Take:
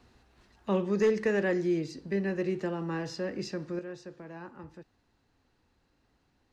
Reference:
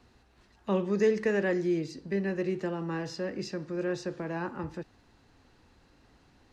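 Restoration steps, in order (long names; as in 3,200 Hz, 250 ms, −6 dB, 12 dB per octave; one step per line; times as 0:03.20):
clipped peaks rebuilt −18.5 dBFS
level correction +10 dB, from 0:03.79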